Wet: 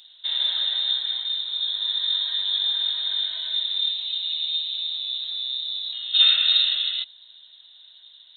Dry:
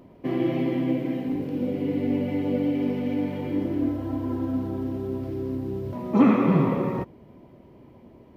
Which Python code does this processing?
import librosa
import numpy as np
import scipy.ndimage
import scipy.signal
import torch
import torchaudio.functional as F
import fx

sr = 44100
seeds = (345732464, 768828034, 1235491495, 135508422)

y = fx.freq_invert(x, sr, carrier_hz=3900)